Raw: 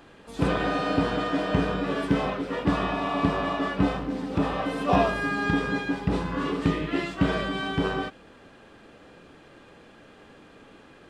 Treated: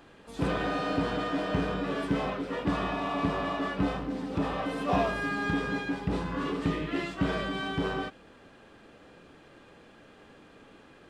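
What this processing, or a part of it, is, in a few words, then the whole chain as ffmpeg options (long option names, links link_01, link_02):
parallel distortion: -filter_complex "[0:a]asplit=2[link_01][link_02];[link_02]asoftclip=type=hard:threshold=-25.5dB,volume=-5dB[link_03];[link_01][link_03]amix=inputs=2:normalize=0,volume=-7dB"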